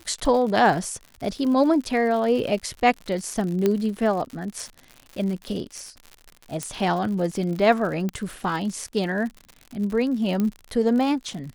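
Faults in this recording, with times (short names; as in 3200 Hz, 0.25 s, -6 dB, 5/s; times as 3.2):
crackle 81/s -31 dBFS
3.66 pop -9 dBFS
6.63 pop -13 dBFS
8.09 pop -16 dBFS
10.4 pop -13 dBFS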